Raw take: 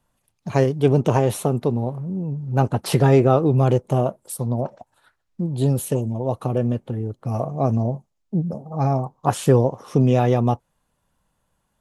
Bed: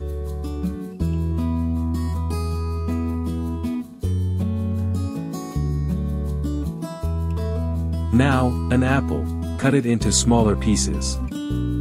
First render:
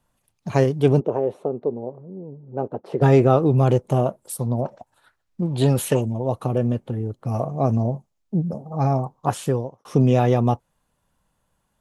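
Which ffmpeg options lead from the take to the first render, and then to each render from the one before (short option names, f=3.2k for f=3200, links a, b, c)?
-filter_complex "[0:a]asplit=3[a][b][c];[a]afade=t=out:st=0.99:d=0.02[d];[b]bandpass=f=450:t=q:w=1.8,afade=t=in:st=0.99:d=0.02,afade=t=out:st=3.01:d=0.02[e];[c]afade=t=in:st=3.01:d=0.02[f];[d][e][f]amix=inputs=3:normalize=0,asettb=1/sr,asplit=3[g][h][i];[g]atrim=end=5.424[j];[h]atrim=start=5.42:end=6.05,asetpts=PTS-STARTPTS,afade=t=in:d=0.004:c=qsin,afade=t=out:st=0.626:d=0.004:c=qsin,equalizer=f=1.8k:w=0.43:g=11.5[k];[i]atrim=start=6.046[l];[j][k]acrossfade=d=0.004:c1=hsin:c2=qsin[m];[m][l]acrossfade=d=0.004:c1=qsin:c2=hsin,asplit=2[n][o];[n]atrim=end=9.85,asetpts=PTS-STARTPTS,afade=t=out:st=9.12:d=0.73[p];[o]atrim=start=9.85,asetpts=PTS-STARTPTS,afade=t=in:d=0.004:c=hsin[q];[p][q]concat=n=2:v=0:a=1"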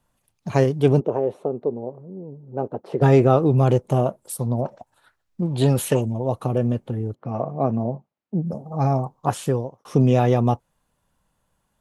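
-filter_complex "[0:a]asplit=3[a][b][c];[a]afade=t=out:st=7.14:d=0.02[d];[b]highpass=150,lowpass=2.5k,afade=t=in:st=7.14:d=0.02,afade=t=out:st=8.45:d=0.02[e];[c]afade=t=in:st=8.45:d=0.02[f];[d][e][f]amix=inputs=3:normalize=0"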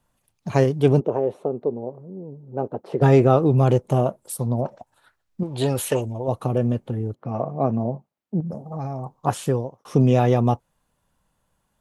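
-filter_complex "[0:a]asettb=1/sr,asplit=3[a][b][c];[a]atrim=end=5.434[d];[b]atrim=start=5.43:end=6.28,asetpts=PTS-STARTPTS,afade=t=in:d=0.004:c=qsin,afade=t=out:st=0.846:d=0.004:c=qsin,equalizer=f=180:w=1.5:g=-11[e];[c]atrim=start=6.276[f];[d][e]acrossfade=d=0.004:c1=hsin:c2=qsin[g];[g][f]acrossfade=d=0.004:c1=qsin:c2=hsin,asettb=1/sr,asplit=3[h][i][j];[h]atrim=end=8.404[k];[i]atrim=start=8.4:end=9.19,asetpts=PTS-STARTPTS,afade=t=in:d=0.004:c=qsin,afade=t=out:st=0.786:d=0.004:c=qsin,acompressor=threshold=-26dB:ratio=6:attack=3.2:release=140:knee=1:detection=peak[l];[j]atrim=start=9.186[m];[k][l]acrossfade=d=0.004:c1=hsin:c2=qsin[n];[n][m]acrossfade=d=0.004:c1=qsin:c2=hsin"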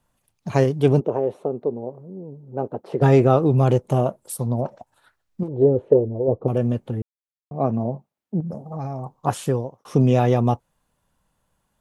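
-filter_complex "[0:a]asettb=1/sr,asplit=3[a][b][c];[a]atrim=end=5.484[d];[b]atrim=start=5.48:end=6.48,asetpts=PTS-STARTPTS,afade=t=in:d=0.004:c=qsin,afade=t=out:st=0.996:d=0.004:c=qsin,lowpass=f=450:t=q:w=3.2[e];[c]atrim=start=6.476[f];[d][e]acrossfade=d=0.004:c1=hsin:c2=qsin[g];[g][f]acrossfade=d=0.004:c1=qsin:c2=hsin,asplit=3[h][i][j];[h]atrim=end=7.02,asetpts=PTS-STARTPTS,afade=t=out:st=7.016:d=0.004:c=hsin[k];[i]atrim=start=7.02:end=7.51,asetpts=PTS-STARTPTS,volume=0[l];[j]atrim=start=7.51,asetpts=PTS-STARTPTS,afade=t=in:d=0.004:c=hsin[m];[k][l][m]concat=n=3:v=0:a=1"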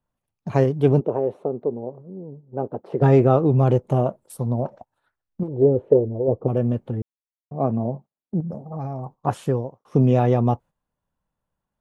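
-af "agate=range=-10dB:threshold=-40dB:ratio=16:detection=peak,equalizer=f=11k:t=o:w=3:g=-10.5"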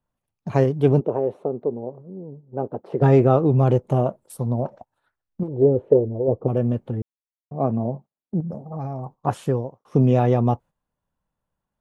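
-af anull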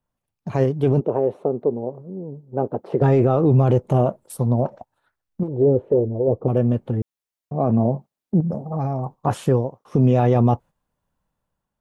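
-af "dynaudnorm=f=750:g=3:m=11.5dB,alimiter=limit=-9dB:level=0:latency=1:release=16"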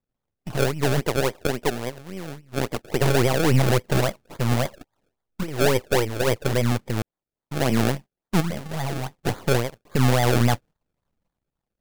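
-af "aeval=exprs='if(lt(val(0),0),0.251*val(0),val(0))':c=same,acrusher=samples=31:mix=1:aa=0.000001:lfo=1:lforange=31:lforate=3.6"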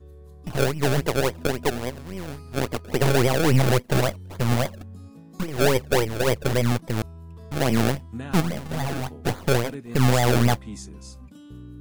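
-filter_complex "[1:a]volume=-18dB[a];[0:a][a]amix=inputs=2:normalize=0"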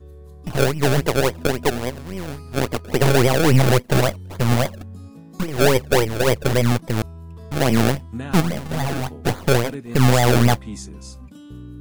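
-af "volume=4dB"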